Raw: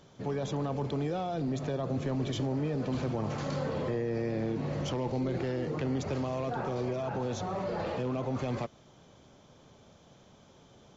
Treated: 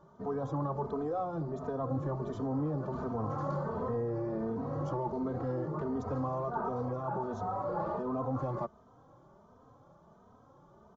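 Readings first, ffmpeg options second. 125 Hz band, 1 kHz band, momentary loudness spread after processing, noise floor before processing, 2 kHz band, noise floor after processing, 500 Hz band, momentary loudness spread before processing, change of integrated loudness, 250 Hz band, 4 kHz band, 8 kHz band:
−3.0 dB, +2.0 dB, 2 LU, −59 dBFS, −8.0 dB, −61 dBFS, −2.0 dB, 2 LU, −2.0 dB, −3.0 dB, below −15 dB, can't be measured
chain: -filter_complex "[0:a]highshelf=frequency=1700:width_type=q:width=3:gain=-13,asplit=2[link_01][link_02];[link_02]adelay=3,afreqshift=1.4[link_03];[link_01][link_03]amix=inputs=2:normalize=1"

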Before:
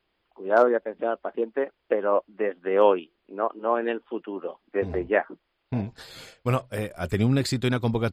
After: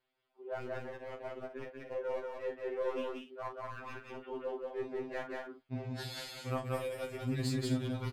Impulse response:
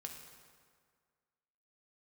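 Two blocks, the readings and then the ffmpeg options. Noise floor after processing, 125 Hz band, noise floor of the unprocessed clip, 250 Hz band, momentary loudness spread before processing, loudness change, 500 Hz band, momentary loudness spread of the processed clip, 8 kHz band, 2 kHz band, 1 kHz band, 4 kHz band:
−77 dBFS, −11.0 dB, −75 dBFS, −11.5 dB, 14 LU, −13.5 dB, −14.5 dB, 10 LU, can't be measured, −13.5 dB, −15.5 dB, −7.5 dB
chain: -filter_complex "[0:a]agate=range=-9dB:threshold=-49dB:ratio=16:detection=peak,lowshelf=frequency=160:gain=-7.5,areverse,acompressor=threshold=-38dB:ratio=4,areverse,aeval=exprs='clip(val(0),-1,0.0188)':channel_layout=same,asplit=2[link_01][link_02];[link_02]aecho=0:1:34.99|183.7|242:0.398|0.794|0.282[link_03];[link_01][link_03]amix=inputs=2:normalize=0,afftfilt=real='re*2.45*eq(mod(b,6),0)':imag='im*2.45*eq(mod(b,6),0)':win_size=2048:overlap=0.75,volume=1.5dB"

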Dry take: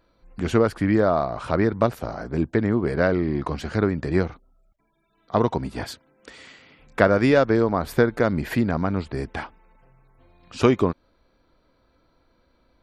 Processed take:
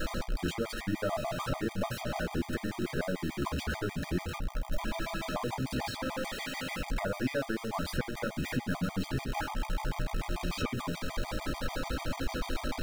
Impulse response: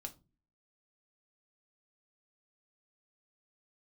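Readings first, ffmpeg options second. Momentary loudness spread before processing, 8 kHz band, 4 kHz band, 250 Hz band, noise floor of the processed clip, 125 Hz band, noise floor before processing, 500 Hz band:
14 LU, can't be measured, 0.0 dB, −11.5 dB, −45 dBFS, −9.5 dB, −65 dBFS, −14.5 dB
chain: -filter_complex "[0:a]aeval=exprs='val(0)+0.5*0.0841*sgn(val(0))':channel_layout=same,acrossover=split=1400|5100[link_01][link_02][link_03];[link_01]acompressor=threshold=-25dB:ratio=4[link_04];[link_02]acompressor=threshold=-31dB:ratio=4[link_05];[link_03]acompressor=threshold=-41dB:ratio=4[link_06];[link_04][link_05][link_06]amix=inputs=3:normalize=0[link_07];[1:a]atrim=start_sample=2205[link_08];[link_07][link_08]afir=irnorm=-1:irlink=0,afftfilt=real='re*gt(sin(2*PI*6.8*pts/sr)*(1-2*mod(floor(b*sr/1024/630),2)),0)':imag='im*gt(sin(2*PI*6.8*pts/sr)*(1-2*mod(floor(b*sr/1024/630),2)),0)':win_size=1024:overlap=0.75,volume=-1dB"

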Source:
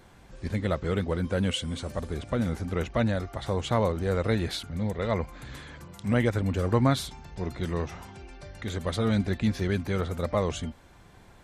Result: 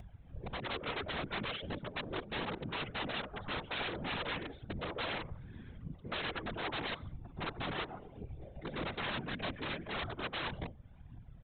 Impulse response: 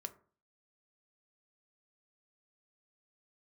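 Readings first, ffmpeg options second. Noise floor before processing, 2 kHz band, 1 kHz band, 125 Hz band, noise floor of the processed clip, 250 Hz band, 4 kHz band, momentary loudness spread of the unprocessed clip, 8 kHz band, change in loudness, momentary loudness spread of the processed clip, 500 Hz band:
−53 dBFS, −2.0 dB, −6.0 dB, −16.5 dB, −55 dBFS, −15.0 dB, −3.0 dB, 13 LU, below −35 dB, −11.0 dB, 11 LU, −13.5 dB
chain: -filter_complex "[0:a]flanger=delay=1.1:depth=4.9:regen=-20:speed=0.18:shape=triangular,acrossover=split=210|450|2300[link_01][link_02][link_03][link_04];[link_01]acompressor=threshold=-40dB:ratio=4[link_05];[link_02]acompressor=threshold=-43dB:ratio=4[link_06];[link_03]acompressor=threshold=-33dB:ratio=4[link_07];[link_04]acompressor=threshold=-51dB:ratio=4[link_08];[link_05][link_06][link_07][link_08]amix=inputs=4:normalize=0,bandreject=frequency=50:width_type=h:width=6,bandreject=frequency=100:width_type=h:width=6,bandreject=frequency=150:width_type=h:width=6,bandreject=frequency=200:width_type=h:width=6,bandreject=frequency=250:width_type=h:width=6,bandreject=frequency=300:width_type=h:width=6,bandreject=frequency=350:width_type=h:width=6,afwtdn=0.00631,aecho=1:1:5.4:0.48,aphaser=in_gain=1:out_gain=1:delay=4.3:decay=0.65:speed=1.7:type=triangular,aecho=1:1:93|186:0.0891|0.0294,aresample=8000,aeval=exprs='(mod(33.5*val(0)+1,2)-1)/33.5':channel_layout=same,aresample=44100,acompressor=mode=upward:threshold=-41dB:ratio=2.5,afftfilt=real='hypot(re,im)*cos(2*PI*random(0))':imag='hypot(re,im)*sin(2*PI*random(1))':win_size=512:overlap=0.75,volume=4dB"

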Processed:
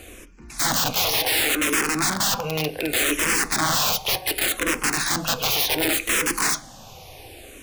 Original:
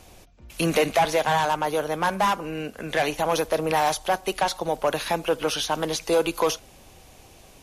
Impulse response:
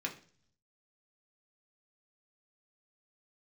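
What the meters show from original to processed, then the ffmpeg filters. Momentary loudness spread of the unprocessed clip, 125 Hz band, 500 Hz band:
6 LU, +1.0 dB, −6.5 dB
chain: -filter_complex "[0:a]aeval=exprs='(mod(15.8*val(0)+1,2)-1)/15.8':channel_layout=same,asplit=2[link_01][link_02];[1:a]atrim=start_sample=2205[link_03];[link_02][link_03]afir=irnorm=-1:irlink=0,volume=-6.5dB[link_04];[link_01][link_04]amix=inputs=2:normalize=0,asplit=2[link_05][link_06];[link_06]afreqshift=-0.67[link_07];[link_05][link_07]amix=inputs=2:normalize=1,volume=8dB"

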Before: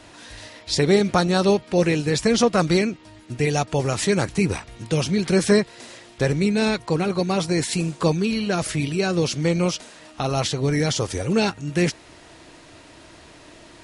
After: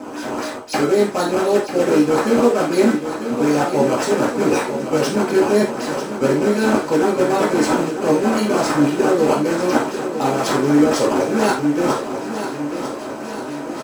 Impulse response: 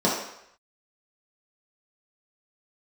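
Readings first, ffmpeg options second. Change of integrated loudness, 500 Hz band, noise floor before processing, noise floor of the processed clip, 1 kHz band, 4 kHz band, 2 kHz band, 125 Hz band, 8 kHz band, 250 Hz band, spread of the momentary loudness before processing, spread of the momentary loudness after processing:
+3.5 dB, +6.0 dB, −47 dBFS, −29 dBFS, +7.5 dB, −1.5 dB, +3.5 dB, −5.0 dB, +0.5 dB, +5.0 dB, 11 LU, 10 LU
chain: -filter_complex "[0:a]highpass=frequency=220:poles=1,equalizer=frequency=4600:width_type=o:width=0.73:gain=7.5,areverse,acompressor=threshold=-29dB:ratio=6,areverse,acrusher=samples=14:mix=1:aa=0.000001:lfo=1:lforange=22.4:lforate=3.9,aecho=1:1:946|1892|2838|3784|4730|5676|6622:0.335|0.191|0.109|0.062|0.0354|0.0202|0.0115[link_01];[1:a]atrim=start_sample=2205,atrim=end_sample=6174,asetrate=61740,aresample=44100[link_02];[link_01][link_02]afir=irnorm=-1:irlink=0,volume=-1.5dB"

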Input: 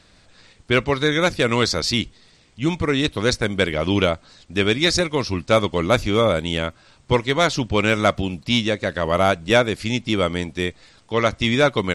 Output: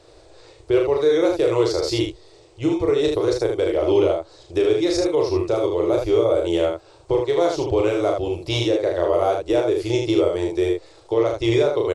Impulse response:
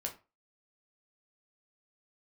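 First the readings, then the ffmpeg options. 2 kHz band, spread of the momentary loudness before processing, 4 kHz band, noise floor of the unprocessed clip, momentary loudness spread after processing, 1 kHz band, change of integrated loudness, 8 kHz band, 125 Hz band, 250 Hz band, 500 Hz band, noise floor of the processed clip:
−11.5 dB, 7 LU, −7.5 dB, −54 dBFS, 6 LU, −4.5 dB, 0.0 dB, −6.5 dB, −5.0 dB, 0.0 dB, +3.5 dB, −50 dBFS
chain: -filter_complex "[0:a]firequalizer=gain_entry='entry(120,0);entry(230,-28);entry(330,13);entry(1600,-7);entry(5000,-2)':delay=0.05:min_phase=1,alimiter=limit=-12dB:level=0:latency=1:release=366,asplit=2[link_01][link_02];[link_02]aecho=0:1:35|77:0.668|0.596[link_03];[link_01][link_03]amix=inputs=2:normalize=0"

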